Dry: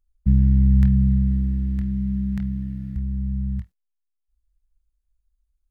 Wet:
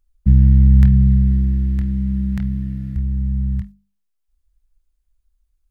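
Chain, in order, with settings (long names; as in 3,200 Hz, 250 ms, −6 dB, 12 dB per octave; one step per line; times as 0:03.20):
mains-hum notches 50/100/150/200 Hz
level +6 dB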